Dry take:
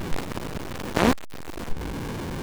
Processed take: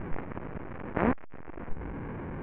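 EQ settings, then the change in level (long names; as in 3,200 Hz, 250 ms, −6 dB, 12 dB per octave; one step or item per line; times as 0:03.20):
Butterworth low-pass 2,300 Hz 36 dB per octave
high-frequency loss of the air 120 metres
−6.0 dB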